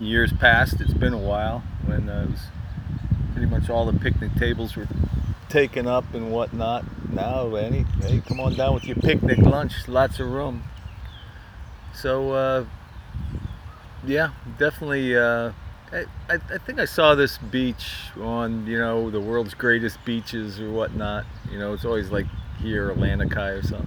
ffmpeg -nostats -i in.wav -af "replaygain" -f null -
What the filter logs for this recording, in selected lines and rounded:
track_gain = +3.6 dB
track_peak = 0.607